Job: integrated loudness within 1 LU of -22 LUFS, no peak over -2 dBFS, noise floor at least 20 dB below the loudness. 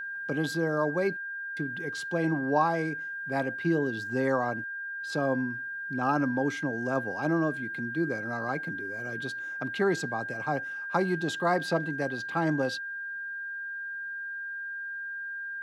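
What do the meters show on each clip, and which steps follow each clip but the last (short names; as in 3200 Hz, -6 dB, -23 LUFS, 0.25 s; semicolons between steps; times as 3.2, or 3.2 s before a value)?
steady tone 1600 Hz; tone level -34 dBFS; loudness -30.5 LUFS; peak -12.0 dBFS; loudness target -22.0 LUFS
-> notch 1600 Hz, Q 30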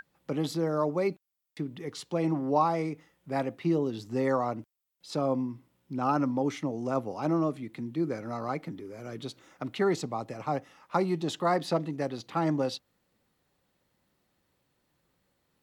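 steady tone none; loudness -31.0 LUFS; peak -12.5 dBFS; loudness target -22.0 LUFS
-> gain +9 dB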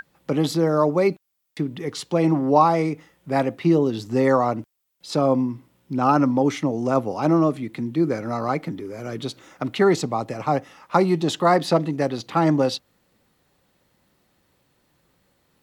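loudness -22.0 LUFS; peak -3.5 dBFS; noise floor -67 dBFS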